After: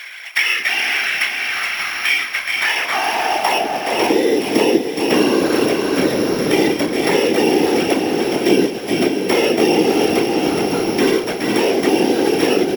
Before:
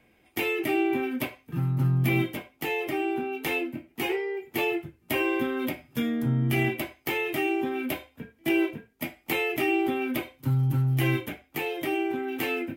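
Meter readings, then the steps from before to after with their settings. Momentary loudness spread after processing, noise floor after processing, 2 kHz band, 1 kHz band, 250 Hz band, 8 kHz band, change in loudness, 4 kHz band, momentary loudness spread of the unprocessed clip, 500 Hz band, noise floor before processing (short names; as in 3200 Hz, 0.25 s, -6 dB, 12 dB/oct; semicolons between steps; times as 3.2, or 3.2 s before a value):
4 LU, -25 dBFS, +12.5 dB, +13.5 dB, +11.5 dB, +17.0 dB, +11.5 dB, +16.5 dB, 9 LU, +14.0 dB, -64 dBFS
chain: sample sorter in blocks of 8 samples; tone controls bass -15 dB, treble -11 dB; in parallel at -2 dB: limiter -26.5 dBFS, peak gain reduction 9.5 dB; on the sum: high shelf 5300 Hz +5.5 dB; frequency-shifting echo 0.419 s, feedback 32%, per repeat -35 Hz, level -7 dB; high-pass sweep 1900 Hz -> 350 Hz, 2.41–4.35; whisperiser; on a send: diffused feedback echo 0.582 s, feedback 45%, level -9 dB; on the sum: three-band squash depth 70%; gain +6.5 dB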